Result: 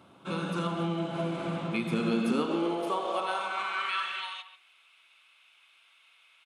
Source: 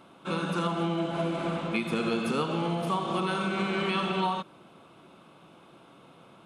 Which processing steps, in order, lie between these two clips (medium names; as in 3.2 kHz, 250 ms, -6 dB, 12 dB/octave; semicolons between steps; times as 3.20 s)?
de-hum 52.92 Hz, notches 39; high-pass sweep 89 Hz -> 2.3 kHz, 1.51–4.40 s; speakerphone echo 140 ms, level -11 dB; trim -3 dB